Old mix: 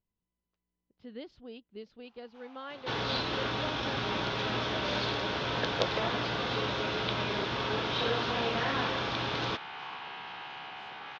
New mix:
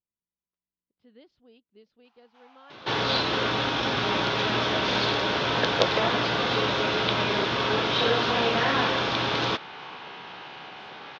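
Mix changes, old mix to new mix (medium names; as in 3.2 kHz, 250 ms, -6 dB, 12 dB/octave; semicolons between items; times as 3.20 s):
speech -9.5 dB; second sound +7.5 dB; master: add bass shelf 73 Hz -11.5 dB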